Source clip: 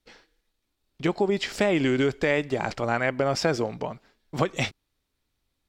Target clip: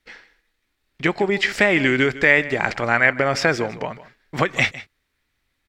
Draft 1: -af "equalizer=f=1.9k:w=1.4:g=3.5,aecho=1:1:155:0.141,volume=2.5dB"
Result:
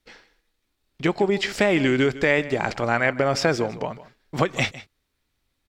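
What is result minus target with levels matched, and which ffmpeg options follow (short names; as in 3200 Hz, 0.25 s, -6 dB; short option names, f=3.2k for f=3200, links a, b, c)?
2000 Hz band -3.5 dB
-af "equalizer=f=1.9k:w=1.4:g=12,aecho=1:1:155:0.141,volume=2.5dB"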